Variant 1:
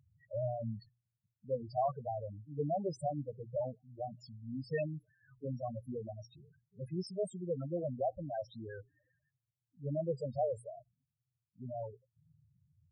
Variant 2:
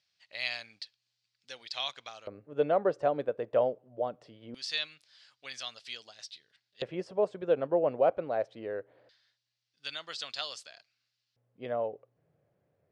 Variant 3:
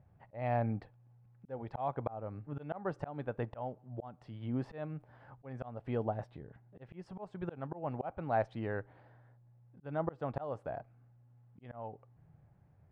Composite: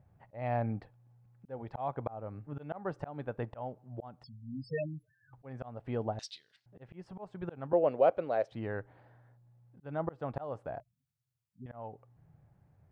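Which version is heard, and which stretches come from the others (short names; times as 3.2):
3
4.24–5.33 from 1
6.19–6.66 from 2
7.73–8.52 from 2
10.8–11.66 from 1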